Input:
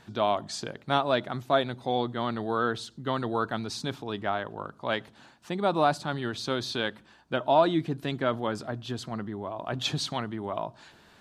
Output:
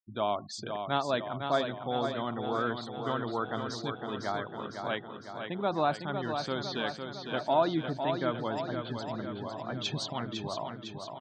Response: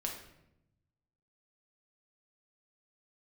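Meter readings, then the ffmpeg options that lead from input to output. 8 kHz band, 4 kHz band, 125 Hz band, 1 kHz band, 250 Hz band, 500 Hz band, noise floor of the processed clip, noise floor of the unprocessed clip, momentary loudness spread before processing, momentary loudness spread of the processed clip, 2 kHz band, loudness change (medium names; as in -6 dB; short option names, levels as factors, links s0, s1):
-5.5 dB, -3.5 dB, -3.5 dB, -3.5 dB, -3.0 dB, -3.5 dB, -46 dBFS, -58 dBFS, 11 LU, 8 LU, -3.5 dB, -3.5 dB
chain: -af "bandreject=f=368.1:t=h:w=4,bandreject=f=736.2:t=h:w=4,bandreject=f=1104.3:t=h:w=4,bandreject=f=1472.4:t=h:w=4,bandreject=f=1840.5:t=h:w=4,bandreject=f=2208.6:t=h:w=4,bandreject=f=2576.7:t=h:w=4,bandreject=f=2944.8:t=h:w=4,bandreject=f=3312.9:t=h:w=4,bandreject=f=3681:t=h:w=4,bandreject=f=4049.1:t=h:w=4,afftfilt=real='re*gte(hypot(re,im),0.0141)':imag='im*gte(hypot(re,im),0.0141)':win_size=1024:overlap=0.75,aecho=1:1:505|1010|1515|2020|2525|3030|3535|4040:0.473|0.284|0.17|0.102|0.0613|0.0368|0.0221|0.0132,volume=0.596"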